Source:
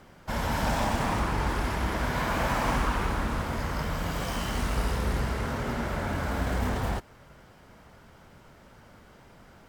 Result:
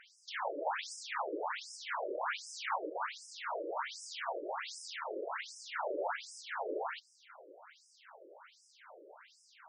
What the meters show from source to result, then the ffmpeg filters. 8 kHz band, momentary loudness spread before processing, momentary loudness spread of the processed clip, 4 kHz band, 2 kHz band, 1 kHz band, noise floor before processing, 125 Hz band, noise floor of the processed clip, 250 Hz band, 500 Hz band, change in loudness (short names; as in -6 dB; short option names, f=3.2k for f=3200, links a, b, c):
-7.5 dB, 4 LU, 20 LU, -7.0 dB, -8.0 dB, -8.0 dB, -54 dBFS, under -40 dB, -67 dBFS, -19.0 dB, -6.0 dB, -10.0 dB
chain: -af "alimiter=limit=-24dB:level=0:latency=1:release=306,afftfilt=real='re*between(b*sr/1024,420*pow(7100/420,0.5+0.5*sin(2*PI*1.3*pts/sr))/1.41,420*pow(7100/420,0.5+0.5*sin(2*PI*1.3*pts/sr))*1.41)':imag='im*between(b*sr/1024,420*pow(7100/420,0.5+0.5*sin(2*PI*1.3*pts/sr))/1.41,420*pow(7100/420,0.5+0.5*sin(2*PI*1.3*pts/sr))*1.41)':win_size=1024:overlap=0.75,volume=5.5dB"